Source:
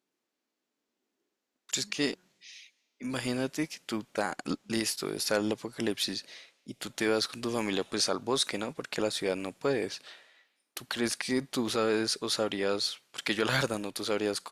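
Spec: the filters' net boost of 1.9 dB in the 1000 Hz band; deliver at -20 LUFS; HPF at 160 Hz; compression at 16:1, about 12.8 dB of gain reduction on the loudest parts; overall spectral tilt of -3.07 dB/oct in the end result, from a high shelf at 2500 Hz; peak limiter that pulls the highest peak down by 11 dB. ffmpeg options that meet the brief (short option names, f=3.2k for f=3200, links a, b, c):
-af "highpass=160,equalizer=f=1k:t=o:g=3.5,highshelf=f=2.5k:g=-4.5,acompressor=threshold=-36dB:ratio=16,volume=24dB,alimiter=limit=-8dB:level=0:latency=1"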